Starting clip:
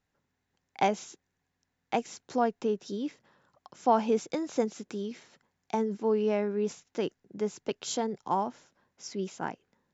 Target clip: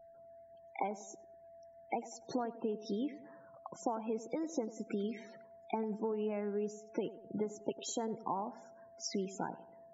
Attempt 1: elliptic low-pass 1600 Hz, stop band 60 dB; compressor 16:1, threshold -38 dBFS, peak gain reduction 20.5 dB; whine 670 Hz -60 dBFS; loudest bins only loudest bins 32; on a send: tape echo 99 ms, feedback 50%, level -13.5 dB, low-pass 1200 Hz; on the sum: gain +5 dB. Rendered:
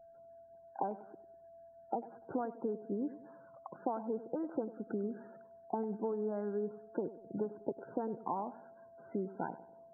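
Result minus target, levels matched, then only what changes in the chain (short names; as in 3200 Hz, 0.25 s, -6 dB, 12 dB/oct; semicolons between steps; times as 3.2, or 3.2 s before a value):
2000 Hz band -4.5 dB
remove: elliptic low-pass 1600 Hz, stop band 60 dB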